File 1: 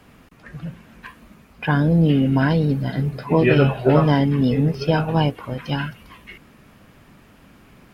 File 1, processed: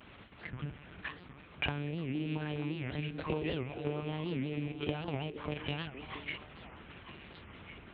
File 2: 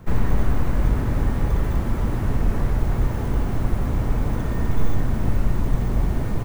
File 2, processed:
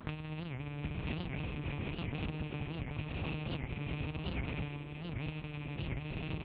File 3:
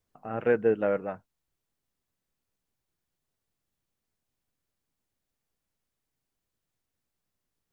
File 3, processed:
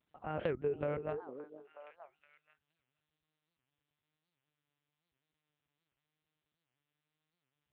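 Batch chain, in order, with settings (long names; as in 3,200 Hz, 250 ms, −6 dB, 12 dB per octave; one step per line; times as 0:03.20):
loose part that buzzes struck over −25 dBFS, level −21 dBFS
in parallel at −3 dB: speech leveller within 4 dB 0.5 s
on the sum: one-pitch LPC vocoder at 8 kHz 150 Hz
dynamic equaliser 1,500 Hz, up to −6 dB, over −34 dBFS, Q 0.78
downward compressor 12 to 1, threshold −22 dBFS
pitch vibrato 1 Hz 58 cents
high-pass filter 63 Hz
high-shelf EQ 2,500 Hz +8.5 dB
echo through a band-pass that steps 469 ms, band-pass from 350 Hz, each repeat 1.4 octaves, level −7 dB
wow of a warped record 78 rpm, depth 250 cents
level −8 dB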